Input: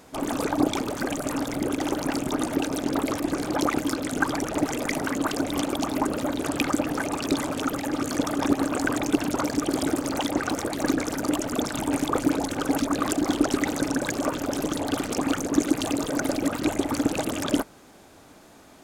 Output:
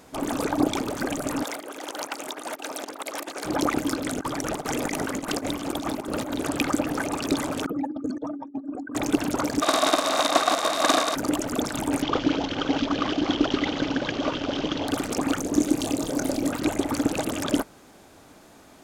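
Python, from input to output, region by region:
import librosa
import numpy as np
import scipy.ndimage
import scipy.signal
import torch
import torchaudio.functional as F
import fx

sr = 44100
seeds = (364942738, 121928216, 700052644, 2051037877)

y = fx.chain(x, sr, fx.over_compress(threshold_db=-29.0, ratio=-0.5),
    fx.highpass(hz=560.0, slope=12), at=(1.43, 3.45))
y = fx.chain(y, sr, fx.over_compress(threshold_db=-29.0, ratio=-0.5),
    fx.echo_single(ms=296, db=-14.0), at=(4.04, 6.35))
y = fx.chain(y, sr, fx.spec_expand(power=2.3),
    fx.over_compress(threshold_db=-31.0, ratio=-0.5), at=(7.66, 8.95))
y = fx.envelope_flatten(y, sr, power=0.3, at=(9.61, 11.14), fade=0.02)
y = fx.bandpass_edges(y, sr, low_hz=250.0, high_hz=7800.0, at=(9.61, 11.14), fade=0.02)
y = fx.small_body(y, sr, hz=(660.0, 1100.0, 3700.0), ring_ms=20, db=15, at=(9.61, 11.14), fade=0.02)
y = fx.chain(y, sr, fx.cvsd(bps=32000),
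    fx.peak_eq(hz=3100.0, db=11.5, octaves=0.42), at=(12.02, 14.88))
y = fx.chain(y, sr, fx.peak_eq(hz=1500.0, db=-6.5, octaves=1.6),
    fx.doubler(ms=27.0, db=-7.5), at=(15.42, 16.51))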